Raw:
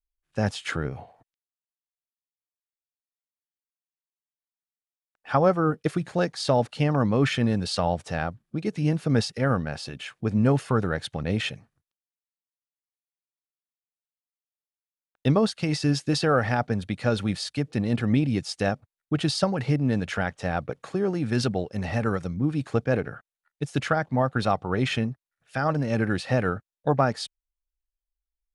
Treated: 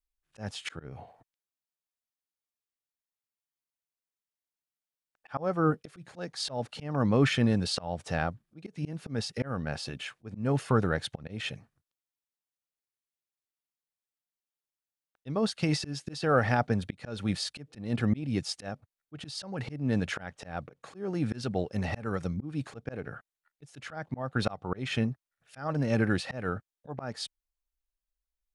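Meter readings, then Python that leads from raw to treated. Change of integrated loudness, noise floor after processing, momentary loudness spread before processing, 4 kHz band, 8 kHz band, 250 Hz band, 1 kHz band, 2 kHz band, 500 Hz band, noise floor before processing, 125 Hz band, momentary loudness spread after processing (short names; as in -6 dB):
-6.0 dB, under -85 dBFS, 9 LU, -4.0 dB, -4.0 dB, -6.0 dB, -7.0 dB, -5.0 dB, -7.0 dB, under -85 dBFS, -6.5 dB, 15 LU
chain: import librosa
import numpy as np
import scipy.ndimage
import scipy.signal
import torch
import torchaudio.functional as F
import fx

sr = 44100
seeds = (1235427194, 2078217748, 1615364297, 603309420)

y = fx.auto_swell(x, sr, attack_ms=285.0)
y = y * librosa.db_to_amplitude(-1.5)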